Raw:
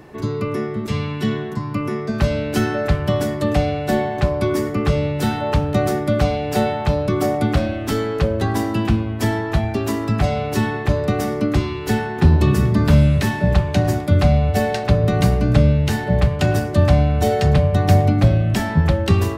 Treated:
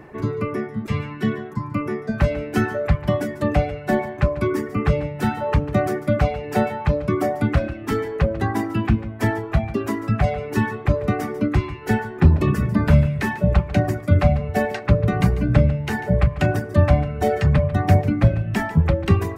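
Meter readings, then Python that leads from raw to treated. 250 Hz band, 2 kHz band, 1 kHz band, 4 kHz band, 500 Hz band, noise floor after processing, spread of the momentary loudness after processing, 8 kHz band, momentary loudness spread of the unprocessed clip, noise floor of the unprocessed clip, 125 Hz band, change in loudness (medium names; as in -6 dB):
-2.5 dB, -1.0 dB, -2.5 dB, -8.0 dB, -2.5 dB, -35 dBFS, 7 LU, -8.0 dB, 7 LU, -27 dBFS, -2.5 dB, -2.5 dB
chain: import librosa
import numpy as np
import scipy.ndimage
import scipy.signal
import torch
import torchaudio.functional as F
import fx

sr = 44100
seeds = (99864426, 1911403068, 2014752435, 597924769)

y = fx.dereverb_blind(x, sr, rt60_s=1.3)
y = fx.high_shelf_res(y, sr, hz=2800.0, db=-7.0, q=1.5)
y = y + 10.0 ** (-15.0 / 20.0) * np.pad(y, (int(145 * sr / 1000.0), 0))[:len(y)]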